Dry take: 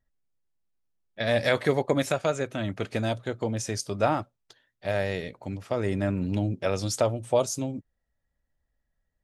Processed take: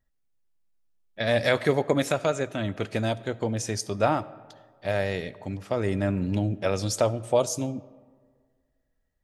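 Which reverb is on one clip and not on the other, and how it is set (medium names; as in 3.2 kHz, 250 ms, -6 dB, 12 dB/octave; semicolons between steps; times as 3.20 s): algorithmic reverb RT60 1.7 s, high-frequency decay 0.5×, pre-delay 30 ms, DRR 19 dB; trim +1 dB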